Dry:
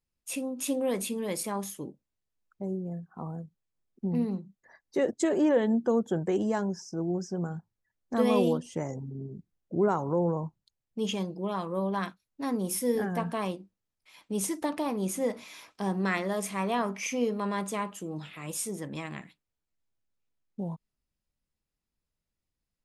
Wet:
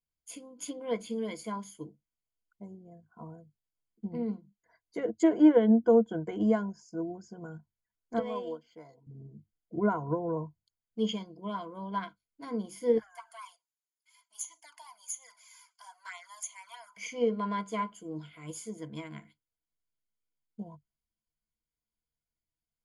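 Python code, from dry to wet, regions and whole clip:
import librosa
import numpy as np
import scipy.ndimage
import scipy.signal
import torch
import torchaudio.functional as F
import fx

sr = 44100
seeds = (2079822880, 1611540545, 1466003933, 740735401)

y = fx.chain(x, sr, fx.highpass(hz=1000.0, slope=6),
    fx.high_shelf(hz=2000.0, db=-9.5),
    fx.resample_linear(factor=4), at=(8.19, 9.07))
y = fx.chain(y, sr, fx.cheby2_highpass(hz=440.0, order=4, stop_db=40),
    fx.high_shelf_res(hz=4700.0, db=7.5, q=1.5),
    fx.env_flanger(rest_ms=3.5, full_db=-28.0), at=(12.98, 16.97))
y = fx.env_lowpass_down(y, sr, base_hz=2700.0, full_db=-22.5)
y = fx.ripple_eq(y, sr, per_octave=1.8, db=15)
y = fx.upward_expand(y, sr, threshold_db=-37.0, expansion=1.5)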